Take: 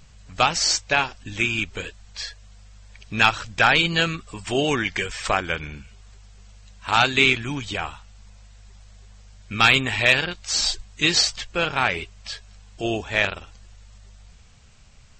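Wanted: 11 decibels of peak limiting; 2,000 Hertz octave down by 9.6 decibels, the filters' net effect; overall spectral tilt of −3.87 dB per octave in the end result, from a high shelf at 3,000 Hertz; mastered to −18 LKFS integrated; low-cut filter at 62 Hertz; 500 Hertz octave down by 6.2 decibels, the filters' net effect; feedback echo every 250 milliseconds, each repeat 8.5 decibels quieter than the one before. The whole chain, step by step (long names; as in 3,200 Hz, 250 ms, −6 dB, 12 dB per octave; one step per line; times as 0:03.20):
high-pass filter 62 Hz
parametric band 500 Hz −7.5 dB
parametric band 2,000 Hz −9 dB
high-shelf EQ 3,000 Hz −8.5 dB
brickwall limiter −20.5 dBFS
repeating echo 250 ms, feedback 38%, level −8.5 dB
level +14.5 dB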